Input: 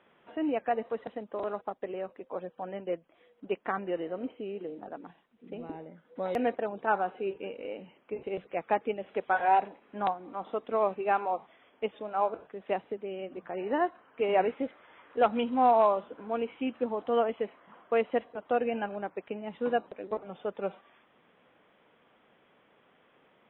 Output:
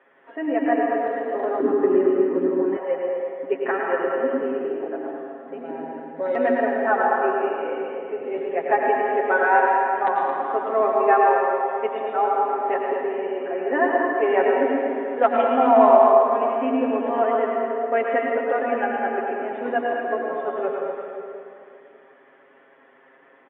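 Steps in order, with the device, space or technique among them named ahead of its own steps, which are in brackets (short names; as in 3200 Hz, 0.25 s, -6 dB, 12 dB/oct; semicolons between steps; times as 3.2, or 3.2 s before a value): station announcement (BPF 370–3500 Hz; bell 1800 Hz +12 dB 0.44 oct; loudspeakers at several distances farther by 38 m -9 dB, 76 m -10 dB; reverb RT60 2.6 s, pre-delay 87 ms, DRR -1 dB); tilt shelf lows +6.5 dB, about 1300 Hz; comb 7.4 ms, depth 89%; 1.6–2.77 resonant low shelf 440 Hz +12.5 dB, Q 3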